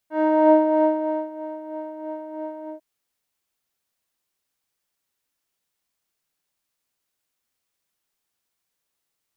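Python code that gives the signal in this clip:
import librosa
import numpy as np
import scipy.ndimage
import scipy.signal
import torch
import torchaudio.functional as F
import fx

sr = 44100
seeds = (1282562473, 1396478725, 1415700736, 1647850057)

y = fx.sub_patch_tremolo(sr, seeds[0], note=75, wave='triangle', wave2='saw', interval_st=-12, detune_cents=16, level2_db=-11.0, sub_db=-2.0, noise_db=-22.0, kind='lowpass', cutoff_hz=650.0, q=2.2, env_oct=1.0, env_decay_s=0.4, env_sustain_pct=40, attack_ms=245.0, decay_s=0.96, sustain_db=-19.0, release_s=0.12, note_s=2.58, lfo_hz=3.1, tremolo_db=6.5)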